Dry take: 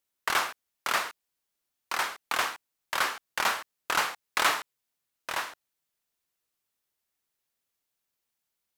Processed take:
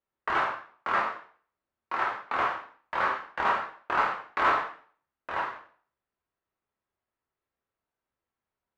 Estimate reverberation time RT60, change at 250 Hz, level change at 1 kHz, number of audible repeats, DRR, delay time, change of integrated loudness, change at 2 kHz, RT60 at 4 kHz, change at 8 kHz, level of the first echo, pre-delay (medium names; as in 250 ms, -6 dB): 0.45 s, +4.0 dB, +4.0 dB, no echo, -2.0 dB, no echo, +0.5 dB, -1.0 dB, 0.45 s, under -20 dB, no echo, 5 ms